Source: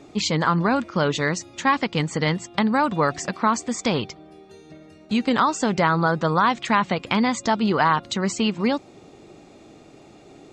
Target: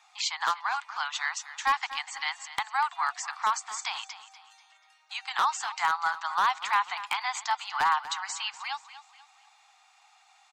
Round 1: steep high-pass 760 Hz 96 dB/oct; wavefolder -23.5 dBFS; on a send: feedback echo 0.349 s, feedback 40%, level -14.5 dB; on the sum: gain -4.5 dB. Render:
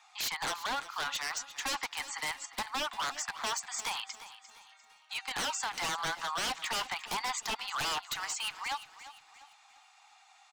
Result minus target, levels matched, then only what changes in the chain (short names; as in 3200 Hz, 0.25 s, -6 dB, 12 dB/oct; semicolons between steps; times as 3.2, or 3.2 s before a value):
wavefolder: distortion +26 dB; echo 0.106 s late
change: wavefolder -12.5 dBFS; change: feedback echo 0.243 s, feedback 40%, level -14.5 dB